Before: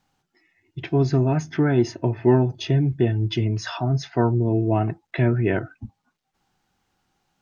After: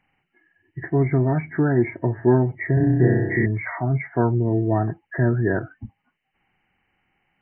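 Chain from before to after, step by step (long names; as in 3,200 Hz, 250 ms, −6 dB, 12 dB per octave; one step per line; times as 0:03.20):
hearing-aid frequency compression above 1,600 Hz 4 to 1
0:02.74–0:03.46: flutter between parallel walls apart 5.4 metres, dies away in 1.2 s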